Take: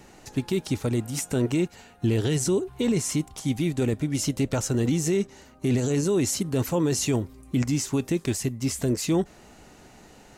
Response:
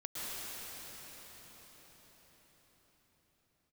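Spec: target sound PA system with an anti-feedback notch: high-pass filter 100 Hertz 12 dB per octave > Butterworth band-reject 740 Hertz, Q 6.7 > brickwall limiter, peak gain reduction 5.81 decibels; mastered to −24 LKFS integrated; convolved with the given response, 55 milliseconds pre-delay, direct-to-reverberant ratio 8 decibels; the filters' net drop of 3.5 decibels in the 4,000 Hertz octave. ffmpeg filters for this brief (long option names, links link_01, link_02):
-filter_complex "[0:a]equalizer=frequency=4000:width_type=o:gain=-5,asplit=2[link_01][link_02];[1:a]atrim=start_sample=2205,adelay=55[link_03];[link_02][link_03]afir=irnorm=-1:irlink=0,volume=-11.5dB[link_04];[link_01][link_04]amix=inputs=2:normalize=0,highpass=100,asuperstop=centerf=740:order=8:qfactor=6.7,volume=4.5dB,alimiter=limit=-13.5dB:level=0:latency=1"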